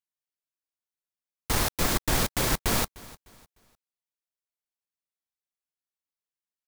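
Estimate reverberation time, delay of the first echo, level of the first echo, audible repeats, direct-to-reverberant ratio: none, 0.302 s, -21.0 dB, 2, none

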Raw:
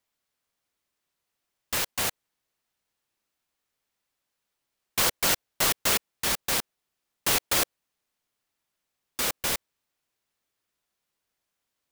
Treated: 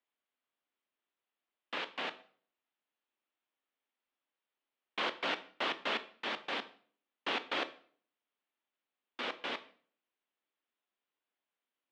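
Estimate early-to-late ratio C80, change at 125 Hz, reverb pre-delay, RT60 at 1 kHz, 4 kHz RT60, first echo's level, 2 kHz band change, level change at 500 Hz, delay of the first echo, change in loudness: 19.5 dB, -21.5 dB, 16 ms, 0.45 s, 0.40 s, none, -6.5 dB, -6.5 dB, none, -12.0 dB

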